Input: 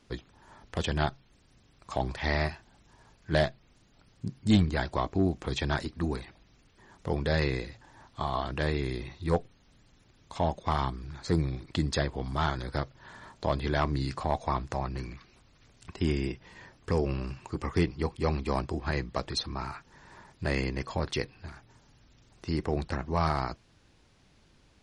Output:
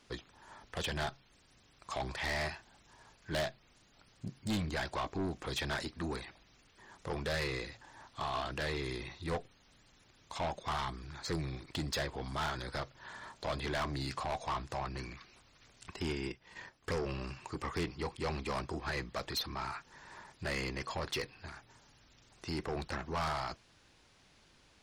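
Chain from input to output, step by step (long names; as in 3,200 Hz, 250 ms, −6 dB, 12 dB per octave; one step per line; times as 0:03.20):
low-shelf EQ 430 Hz −9 dB
0:16.08–0:17.01: transient designer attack +5 dB, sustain −9 dB
soft clipping −32.5 dBFS, distortion −7 dB
level +2 dB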